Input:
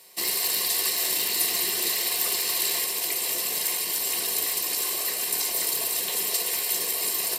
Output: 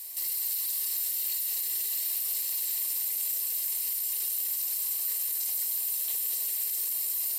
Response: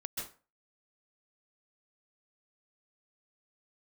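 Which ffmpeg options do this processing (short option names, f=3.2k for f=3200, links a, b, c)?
-filter_complex "[0:a]aemphasis=mode=production:type=riaa,alimiter=limit=-17.5dB:level=0:latency=1,asplit=2[a][b];[1:a]atrim=start_sample=2205,adelay=96[c];[b][c]afir=irnorm=-1:irlink=0,volume=-7dB[d];[a][d]amix=inputs=2:normalize=0,volume=-5dB"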